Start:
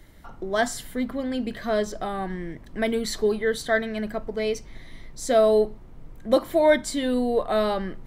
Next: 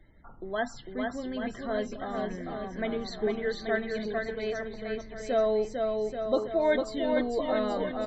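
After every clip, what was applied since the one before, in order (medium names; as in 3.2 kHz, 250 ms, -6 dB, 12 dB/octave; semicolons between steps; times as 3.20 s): low-pass 5.4 kHz 12 dB/octave; loudest bins only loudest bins 64; bouncing-ball echo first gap 450 ms, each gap 0.85×, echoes 5; trim -7.5 dB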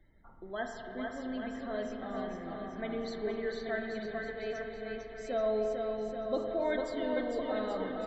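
spring tank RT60 3 s, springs 35/46 ms, chirp 35 ms, DRR 3.5 dB; trim -7 dB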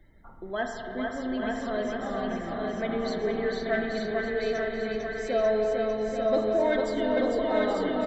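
saturation -22.5 dBFS, distortion -24 dB; delay 892 ms -3.5 dB; trim +7 dB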